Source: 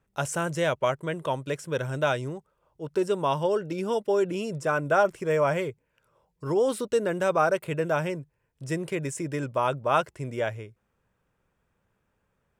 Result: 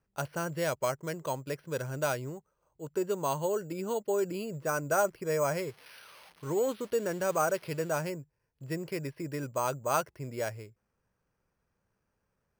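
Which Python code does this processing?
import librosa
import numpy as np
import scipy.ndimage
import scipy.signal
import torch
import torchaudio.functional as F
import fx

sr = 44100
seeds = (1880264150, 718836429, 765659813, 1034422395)

y = fx.crossing_spikes(x, sr, level_db=-26.0, at=(5.67, 8.01))
y = np.repeat(scipy.signal.resample_poly(y, 1, 6), 6)[:len(y)]
y = y * librosa.db_to_amplitude(-5.5)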